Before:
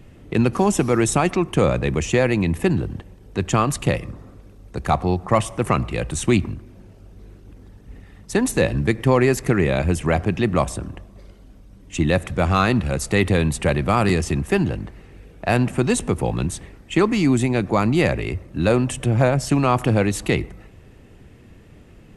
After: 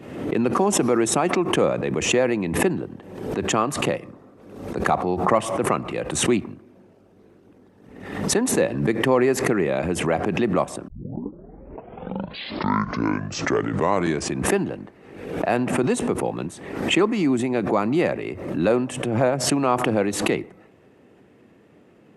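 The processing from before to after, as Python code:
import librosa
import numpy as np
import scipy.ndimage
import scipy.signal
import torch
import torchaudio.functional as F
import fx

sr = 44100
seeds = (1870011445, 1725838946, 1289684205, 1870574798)

y = fx.edit(x, sr, fx.tape_start(start_s=10.88, length_s=3.64), tone=tone)
y = scipy.signal.sosfilt(scipy.signal.butter(2, 250.0, 'highpass', fs=sr, output='sos'), y)
y = fx.high_shelf(y, sr, hz=2100.0, db=-11.0)
y = fx.pre_swell(y, sr, db_per_s=61.0)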